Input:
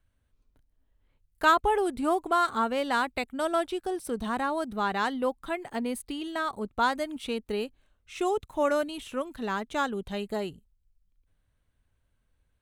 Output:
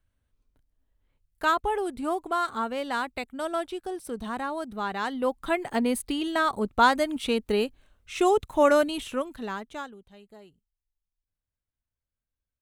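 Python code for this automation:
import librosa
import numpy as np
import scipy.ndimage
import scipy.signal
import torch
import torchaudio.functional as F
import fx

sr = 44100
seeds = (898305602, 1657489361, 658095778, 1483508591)

y = fx.gain(x, sr, db=fx.line((5.01, -2.5), (5.52, 6.0), (8.98, 6.0), (9.77, -7.0), (10.03, -18.0)))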